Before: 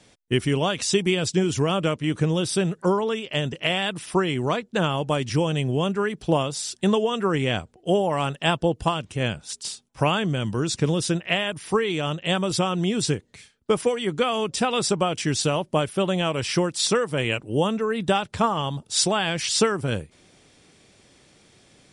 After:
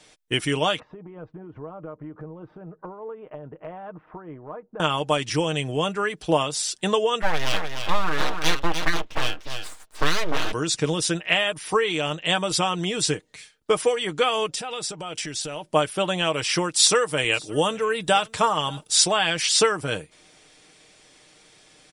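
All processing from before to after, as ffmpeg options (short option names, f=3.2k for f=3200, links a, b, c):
-filter_complex "[0:a]asettb=1/sr,asplit=3[a][b][c];[a]atrim=end=0.794[d];[b]atrim=start=0.79:end=4.8,asetpts=PTS-STARTPTS,afade=t=in:d=0.004:c=qsin,afade=t=out:st=4.006:d=0.004:c=qsin,lowpass=f=1.2k:w=0.5412,lowpass=f=1.2k:w=1.3066,acompressor=threshold=-31dB:ratio=12:attack=3.2:release=140:knee=1:detection=peak,tremolo=f=4.8:d=0.31[e];[c]atrim=start=4.796[f];[d][e]acrossfade=d=0.004:c1=hsin:c2=qsin[g];[g][f]acrossfade=d=0.004:c1=qsin:c2=hsin,asettb=1/sr,asplit=3[h][i][j];[h]atrim=end=7.224[k];[i]atrim=start=7.22:end=10.52,asetpts=PTS-STARTPTS,afade=t=in:d=0.004:c=qsin,afade=t=out:st=3.296:d=0.004:c=qsin,lowpass=f=4k:w=0.5412,lowpass=f=4k:w=1.3066,aecho=1:1:299:0.473,atrim=end_sample=145530,aeval=exprs='abs(val(0))':c=same[l];[j]atrim=start=10.516[m];[k][l]acrossfade=d=0.004:c1=hsin:c2=qsin[n];[n][m]acrossfade=d=0.004:c1=qsin:c2=hsin,asettb=1/sr,asplit=3[o][p][q];[o]atrim=end=14.464[r];[p]atrim=start=14.46:end=15.65,asetpts=PTS-STARTPTS,afade=t=in:d=0.004:c=qsin,afade=t=out:st=1.186:d=0.004:c=qsin,bandreject=f=1.1k:w=11,acompressor=threshold=-28dB:ratio=12:attack=3.2:release=140:knee=1:detection=peak[s];[q]atrim=start=15.646[t];[r][s]acrossfade=d=0.004:c1=hsin:c2=qsin[u];[u][t]acrossfade=d=0.004:c1=qsin:c2=hsin,asettb=1/sr,asplit=3[v][w][x];[v]atrim=end=16.764[y];[w]atrim=start=16.76:end=18.96,asetpts=PTS-STARTPTS,afade=t=in:d=0.004:c=qsin,afade=t=out:st=2.196:d=0.004:c=qsin,highshelf=f=7.2k:g=8.5,aecho=1:1:573:0.0631,atrim=end_sample=97020[z];[x]atrim=start=18.956[aa];[y][z]acrossfade=d=0.004:c1=hsin:c2=qsin[ab];[ab][aa]acrossfade=d=0.004:c1=qsin:c2=hsin,equalizer=f=120:w=0.39:g=-11,aecho=1:1:6.5:0.43,volume=3dB"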